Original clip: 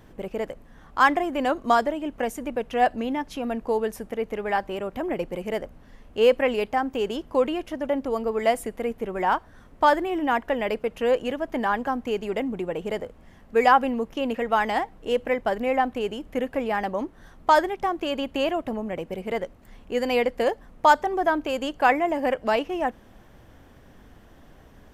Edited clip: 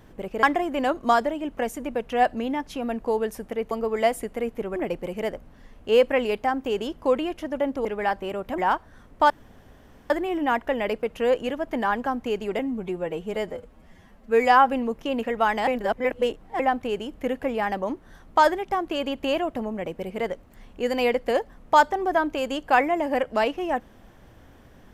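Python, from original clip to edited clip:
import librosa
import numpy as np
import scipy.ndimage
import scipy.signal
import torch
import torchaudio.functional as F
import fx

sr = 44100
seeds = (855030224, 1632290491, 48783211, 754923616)

y = fx.edit(x, sr, fx.cut(start_s=0.43, length_s=0.61),
    fx.swap(start_s=4.32, length_s=0.73, other_s=8.14, other_length_s=1.05),
    fx.insert_room_tone(at_s=9.91, length_s=0.8),
    fx.stretch_span(start_s=12.4, length_s=1.39, factor=1.5),
    fx.reverse_span(start_s=14.79, length_s=0.92), tone=tone)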